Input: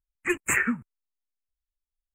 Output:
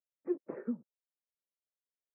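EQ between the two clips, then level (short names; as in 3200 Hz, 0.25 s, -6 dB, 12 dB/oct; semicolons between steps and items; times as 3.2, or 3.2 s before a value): HPF 200 Hz 24 dB/oct; ladder low-pass 620 Hz, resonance 60%; +2.0 dB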